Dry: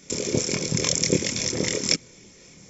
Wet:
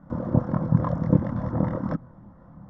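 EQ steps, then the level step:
low-pass filter 1,300 Hz 24 dB per octave
phaser with its sweep stopped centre 990 Hz, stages 4
+9.0 dB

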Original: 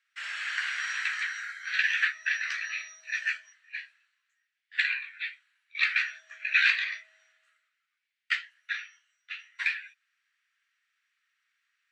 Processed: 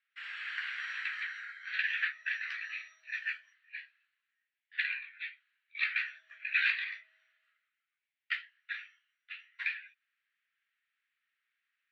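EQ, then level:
resonant band-pass 6,900 Hz, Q 0.72
high-frequency loss of the air 490 metres
+7.5 dB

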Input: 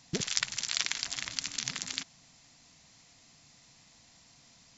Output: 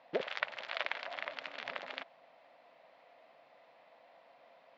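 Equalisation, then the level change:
high-pass with resonance 580 Hz, resonance Q 4.9
low-pass filter 3,700 Hz 12 dB per octave
high-frequency loss of the air 460 metres
+3.5 dB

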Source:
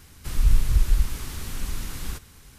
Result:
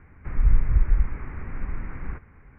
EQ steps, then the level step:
Butterworth low-pass 2,300 Hz 72 dB per octave
0.0 dB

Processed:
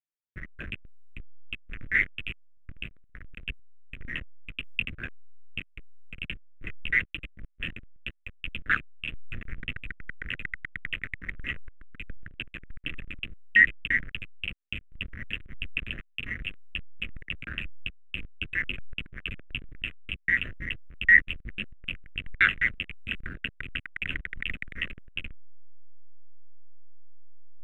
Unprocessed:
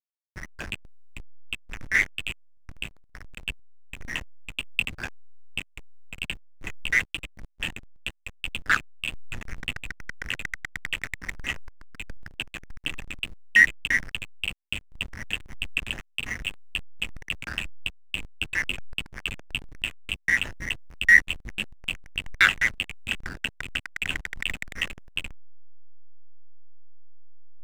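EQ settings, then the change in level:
high-frequency loss of the air 390 metres
high-shelf EQ 4,400 Hz +11 dB
phaser with its sweep stopped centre 2,100 Hz, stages 4
0.0 dB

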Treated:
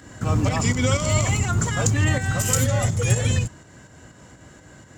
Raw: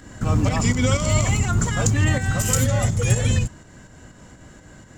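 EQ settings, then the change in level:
high-pass filter 70 Hz
parametric band 210 Hz −3.5 dB 0.58 octaves
0.0 dB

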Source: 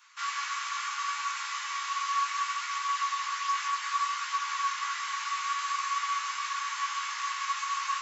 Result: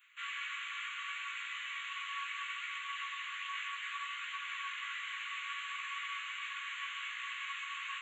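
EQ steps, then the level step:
four-pole ladder high-pass 2,600 Hz, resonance 35%
Butterworth band-reject 5,200 Hz, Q 0.5
high-shelf EQ 5,600 Hz −5.5 dB
+18.0 dB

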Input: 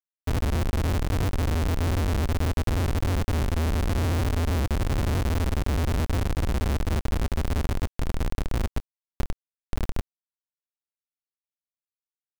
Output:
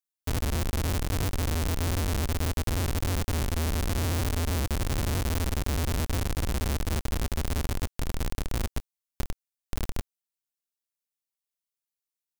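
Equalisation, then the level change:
high-shelf EQ 3,800 Hz +10 dB
−3.5 dB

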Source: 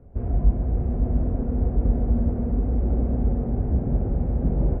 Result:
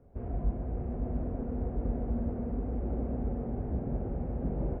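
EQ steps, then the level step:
low-shelf EQ 200 Hz −8 dB
−4.5 dB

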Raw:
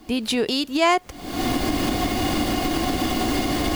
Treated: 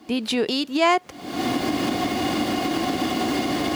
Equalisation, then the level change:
high-pass filter 140 Hz 12 dB per octave
high-shelf EQ 8,500 Hz −9 dB
0.0 dB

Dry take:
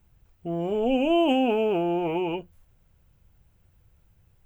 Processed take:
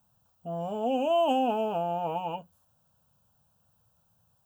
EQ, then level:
high-pass filter 190 Hz 12 dB per octave
phaser with its sweep stopped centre 880 Hz, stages 4
+2.0 dB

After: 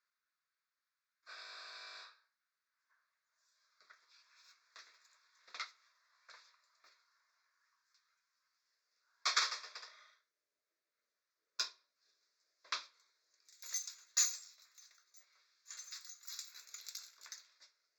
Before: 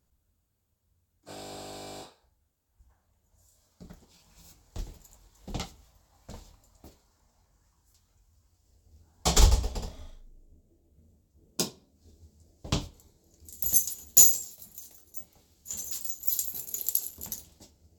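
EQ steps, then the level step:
high-pass filter 970 Hz 24 dB per octave
high-frequency loss of the air 210 metres
phaser with its sweep stopped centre 3,000 Hz, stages 6
+5.5 dB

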